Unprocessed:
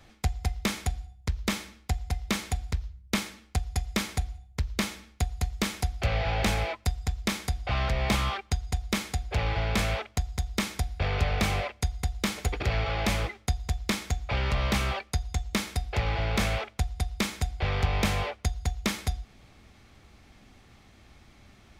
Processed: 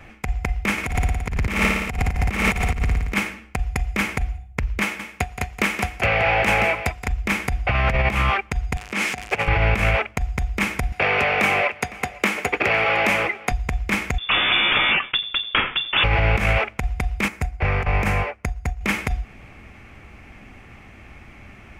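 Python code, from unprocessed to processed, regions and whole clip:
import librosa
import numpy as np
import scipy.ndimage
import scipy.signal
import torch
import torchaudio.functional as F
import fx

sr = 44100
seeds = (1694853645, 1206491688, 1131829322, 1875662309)

y = fx.chain(x, sr, fx.leveller(passes=1),
    fx.room_flutter(wall_m=9.7, rt60_s=1.2), at=(0.78, 3.14))
y = fx.chain(y, sr, fx.highpass(hz=260.0, slope=6),
    fx.echo_single(ms=173, db=-10.5), at=(4.82, 7.08))
y = fx.chain(y, sr, fx.crossing_spikes(level_db=-23.0),
    fx.over_compress(threshold_db=-29.0, ratio=-0.5),
    fx.bandpass_edges(low_hz=180.0, high_hz=6100.0), at=(8.77, 9.48))
y = fx.chain(y, sr, fx.highpass(hz=260.0, slope=12),
    fx.echo_single(ms=507, db=-23.5),
    fx.band_squash(depth_pct=40), at=(10.92, 13.52))
y = fx.chain(y, sr, fx.freq_invert(carrier_hz=3500),
    fx.sustainer(db_per_s=140.0), at=(14.18, 16.04))
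y = fx.chain(y, sr, fx.peak_eq(hz=3300.0, db=-6.5, octaves=0.69),
    fx.upward_expand(threshold_db=-39.0, expansion=1.5), at=(17.28, 18.81))
y = fx.high_shelf_res(y, sr, hz=3100.0, db=-7.0, q=3.0)
y = fx.over_compress(y, sr, threshold_db=-27.0, ratio=-0.5)
y = F.gain(torch.from_numpy(y), 9.0).numpy()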